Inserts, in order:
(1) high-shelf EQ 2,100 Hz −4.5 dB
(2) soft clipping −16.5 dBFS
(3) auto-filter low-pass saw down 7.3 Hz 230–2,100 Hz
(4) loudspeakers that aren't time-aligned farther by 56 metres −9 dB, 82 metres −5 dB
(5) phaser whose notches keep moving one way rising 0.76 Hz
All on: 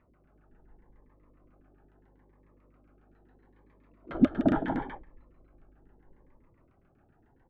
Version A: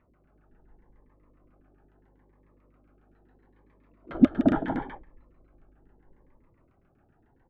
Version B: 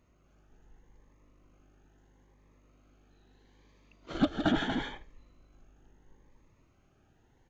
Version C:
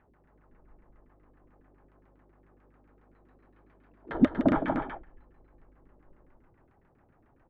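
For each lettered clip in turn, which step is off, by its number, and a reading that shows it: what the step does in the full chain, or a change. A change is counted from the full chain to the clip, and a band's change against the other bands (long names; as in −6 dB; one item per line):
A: 2, distortion level −12 dB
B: 3, change in crest factor −3.5 dB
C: 5, 125 Hz band −2.0 dB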